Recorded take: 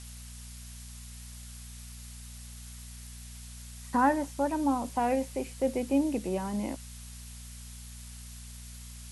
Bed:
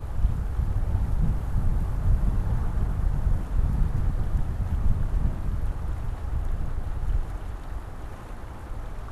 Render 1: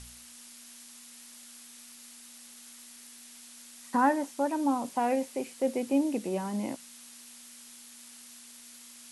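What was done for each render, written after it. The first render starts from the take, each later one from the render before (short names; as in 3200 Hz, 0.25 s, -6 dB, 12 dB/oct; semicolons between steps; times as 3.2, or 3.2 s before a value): de-hum 60 Hz, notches 3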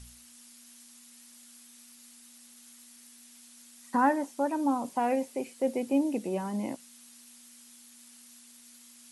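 denoiser 6 dB, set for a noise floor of -51 dBFS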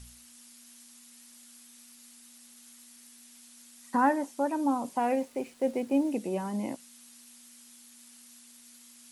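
5.12–6.11 backlash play -48 dBFS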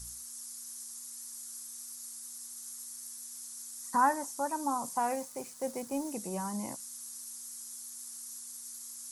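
EQ curve 170 Hz 0 dB, 260 Hz -10 dB, 610 Hz -6 dB, 1100 Hz +3 dB, 2800 Hz -9 dB, 6000 Hz +10 dB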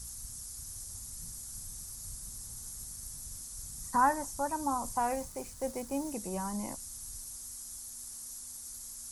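add bed -27 dB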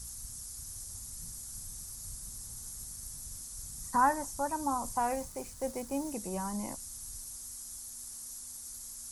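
nothing audible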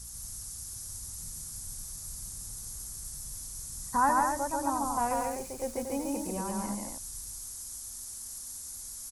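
loudspeakers at several distances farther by 48 m -2 dB, 80 m -6 dB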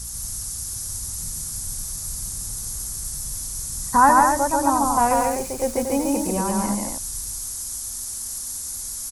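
gain +11 dB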